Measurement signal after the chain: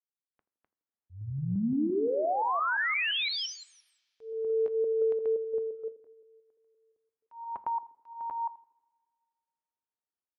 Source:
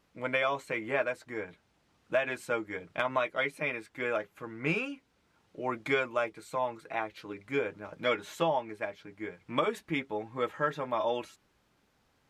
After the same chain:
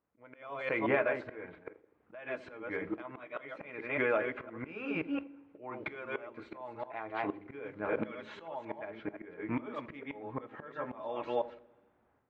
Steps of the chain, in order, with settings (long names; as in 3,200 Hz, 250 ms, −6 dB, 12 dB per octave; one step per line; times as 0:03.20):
delay that plays each chunk backwards 173 ms, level −7 dB
low-pass that shuts in the quiet parts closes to 1,700 Hz, open at −24.5 dBFS
low-pass filter 2,300 Hz 12 dB per octave
noise gate −51 dBFS, range −13 dB
high-pass filter 93 Hz 6 dB per octave
parametric band 160 Hz −8 dB 0.2 octaves
downward compressor 10 to 1, threshold −39 dBFS
volume swells 487 ms
automatic gain control gain up to 13 dB
on a send: feedback echo with a band-pass in the loop 82 ms, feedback 56%, band-pass 310 Hz, level −14 dB
on the sum: coupled-rooms reverb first 0.37 s, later 1.8 s, from −18 dB, DRR 16 dB